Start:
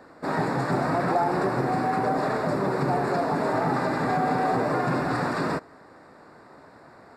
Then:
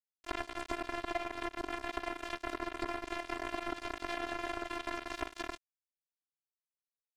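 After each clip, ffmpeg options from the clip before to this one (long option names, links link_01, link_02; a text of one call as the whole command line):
ffmpeg -i in.wav -af "acrusher=bits=2:mix=0:aa=0.5,afftfilt=real='hypot(re,im)*cos(PI*b)':imag='0':win_size=512:overlap=0.75,acompressor=threshold=-39dB:ratio=6,volume=6.5dB" out.wav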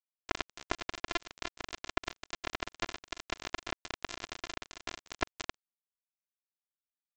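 ffmpeg -i in.wav -af "equalizer=frequency=2800:width_type=o:width=2:gain=-4.5,aresample=16000,acrusher=bits=3:mix=0:aa=0.5,aresample=44100,volume=6dB" out.wav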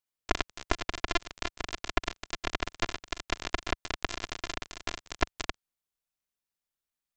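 ffmpeg -i in.wav -af "lowshelf=frequency=76:gain=10.5,volume=4.5dB" out.wav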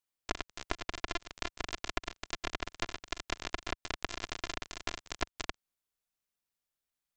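ffmpeg -i in.wav -af "acompressor=threshold=-30dB:ratio=6" out.wav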